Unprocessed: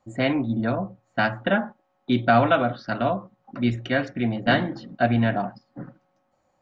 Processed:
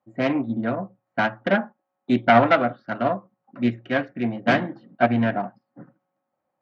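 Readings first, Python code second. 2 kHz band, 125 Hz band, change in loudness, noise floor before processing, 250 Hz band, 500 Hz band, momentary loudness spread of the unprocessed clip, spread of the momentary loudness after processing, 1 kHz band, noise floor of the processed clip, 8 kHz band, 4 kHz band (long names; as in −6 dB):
+1.0 dB, −3.5 dB, +1.0 dB, −70 dBFS, +0.5 dB, +1.5 dB, 19 LU, 14 LU, +2.0 dB, −80 dBFS, can't be measured, −2.5 dB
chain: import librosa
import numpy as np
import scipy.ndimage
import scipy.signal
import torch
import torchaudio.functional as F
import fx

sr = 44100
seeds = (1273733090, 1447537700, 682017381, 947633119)

y = fx.self_delay(x, sr, depth_ms=0.22)
y = fx.bandpass_edges(y, sr, low_hz=140.0, high_hz=2500.0)
y = fx.upward_expand(y, sr, threshold_db=-43.0, expansion=1.5)
y = y * librosa.db_to_amplitude(4.5)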